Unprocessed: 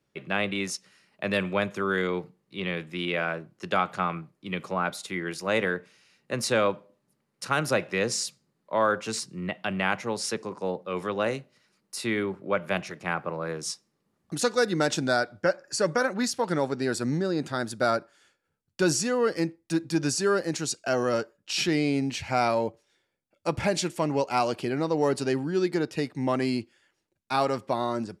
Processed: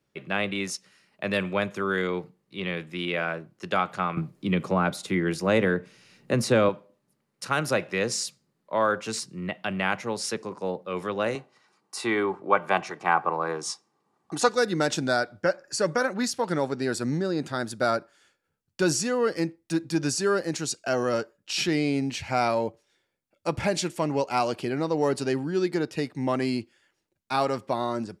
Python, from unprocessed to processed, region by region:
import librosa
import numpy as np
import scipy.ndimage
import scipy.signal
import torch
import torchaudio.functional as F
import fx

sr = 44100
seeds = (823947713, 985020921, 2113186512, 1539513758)

y = fx.chain(x, sr, fx.low_shelf(hz=480.0, db=9.5),
    fx.band_squash(depth_pct=40), at=(4.17, 6.69))
y = fx.chain(y, sr, fx.cheby1_bandpass(low_hz=150.0, high_hz=8700.0, order=2),
    fx.peak_eq(hz=940.0, db=13.5, octaves=0.95),
    fx.comb(ms=2.6, depth=0.37), at=(11.35, 14.49))